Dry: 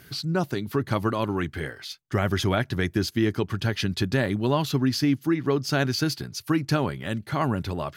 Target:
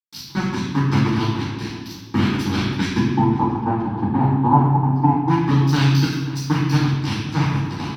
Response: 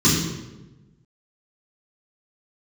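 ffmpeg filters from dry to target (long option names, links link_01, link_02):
-filter_complex "[0:a]highpass=260,acompressor=threshold=-34dB:ratio=3,flanger=delay=3.4:depth=4:regen=-75:speed=0.26:shape=triangular,aeval=exprs='sgn(val(0))*max(abs(val(0))-0.0188,0)':channel_layout=same,asettb=1/sr,asplit=3[link_01][link_02][link_03];[link_01]atrim=end=3.024[link_04];[link_02]atrim=start=3.02:end=5.28,asetpts=PTS-STARTPTS,afade=type=in:duration=0.004:curve=qsin,afade=type=out:start_time=2.256:duration=0.004:curve=qsin,lowpass=frequency=830:width_type=q:width=6.4[link_05];[link_03]atrim=start=5.276[link_06];[link_04][link_05]acrossfade=duration=0.004:curve1=hsin:curve2=qsin[link_07];[link_07][link_06]acrossfade=duration=0.004:curve1=qsin:curve2=hsin,asplit=2[link_08][link_09];[link_09]adelay=530.6,volume=-15dB,highshelf=frequency=4000:gain=-11.9[link_10];[link_08][link_10]amix=inputs=2:normalize=0[link_11];[1:a]atrim=start_sample=2205,asetrate=36603,aresample=44100[link_12];[link_11][link_12]afir=irnorm=-1:irlink=0,volume=4.5dB"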